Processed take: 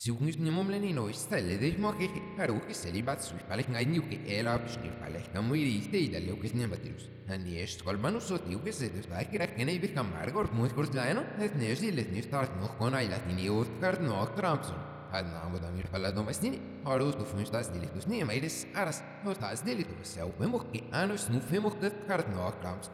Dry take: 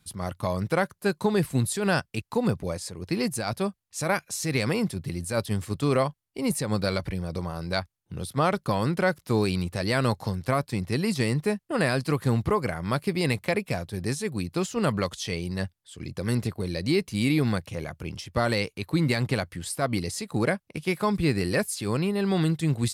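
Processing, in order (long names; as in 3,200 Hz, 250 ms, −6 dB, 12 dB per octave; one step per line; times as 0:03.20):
played backwards from end to start
spring reverb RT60 3.8 s, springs 34 ms, chirp 65 ms, DRR 9 dB
level −7 dB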